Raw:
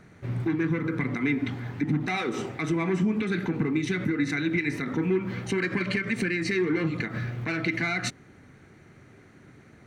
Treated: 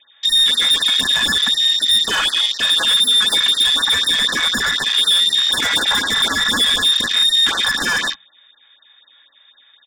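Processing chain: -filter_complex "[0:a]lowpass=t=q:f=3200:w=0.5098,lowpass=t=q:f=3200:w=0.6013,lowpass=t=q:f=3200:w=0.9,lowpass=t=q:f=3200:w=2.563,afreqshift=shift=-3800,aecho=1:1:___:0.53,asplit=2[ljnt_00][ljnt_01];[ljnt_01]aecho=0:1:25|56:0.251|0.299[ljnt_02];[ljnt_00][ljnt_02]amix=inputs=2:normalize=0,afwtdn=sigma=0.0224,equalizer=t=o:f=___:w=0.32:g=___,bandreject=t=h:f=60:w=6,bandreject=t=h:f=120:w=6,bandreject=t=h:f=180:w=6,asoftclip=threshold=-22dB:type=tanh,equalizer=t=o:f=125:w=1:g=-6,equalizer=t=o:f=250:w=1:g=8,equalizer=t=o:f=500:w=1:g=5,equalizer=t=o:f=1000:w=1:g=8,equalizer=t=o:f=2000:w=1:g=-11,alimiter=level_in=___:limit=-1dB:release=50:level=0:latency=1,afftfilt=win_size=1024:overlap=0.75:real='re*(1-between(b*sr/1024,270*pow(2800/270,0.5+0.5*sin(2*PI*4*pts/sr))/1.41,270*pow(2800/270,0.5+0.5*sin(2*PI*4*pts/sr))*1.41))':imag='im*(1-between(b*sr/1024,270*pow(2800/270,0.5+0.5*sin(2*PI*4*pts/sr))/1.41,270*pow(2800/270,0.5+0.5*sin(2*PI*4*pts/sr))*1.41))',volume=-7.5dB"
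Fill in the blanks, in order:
3.6, 1800, 12, 25.5dB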